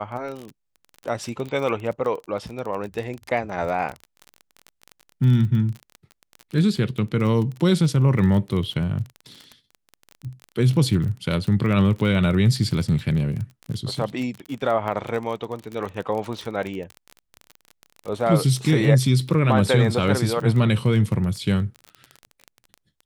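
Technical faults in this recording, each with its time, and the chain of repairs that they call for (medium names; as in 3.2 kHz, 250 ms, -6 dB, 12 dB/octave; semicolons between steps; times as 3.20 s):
crackle 26 per s -28 dBFS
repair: de-click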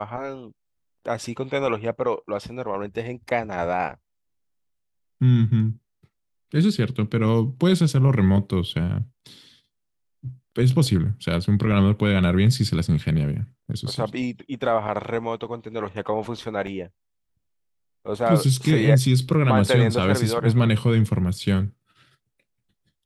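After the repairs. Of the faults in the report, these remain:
nothing left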